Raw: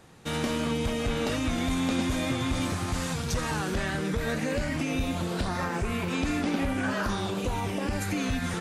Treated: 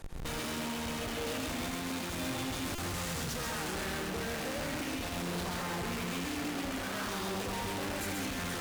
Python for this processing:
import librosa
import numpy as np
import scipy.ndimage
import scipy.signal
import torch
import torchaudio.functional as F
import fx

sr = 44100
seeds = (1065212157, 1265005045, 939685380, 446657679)

p1 = fx.highpass(x, sr, hz=58.0, slope=6)
p2 = fx.high_shelf(p1, sr, hz=11000.0, db=10.5)
p3 = fx.hum_notches(p2, sr, base_hz=50, count=5)
p4 = fx.schmitt(p3, sr, flips_db=-46.0)
p5 = p3 + (p4 * librosa.db_to_amplitude(-5.0))
p6 = fx.tube_stage(p5, sr, drive_db=42.0, bias=0.65)
p7 = p6 + fx.echo_single(p6, sr, ms=132, db=-3.5, dry=0)
p8 = fx.buffer_glitch(p7, sr, at_s=(2.75,), block=128, repeats=10)
y = p8 * librosa.db_to_amplitude(4.5)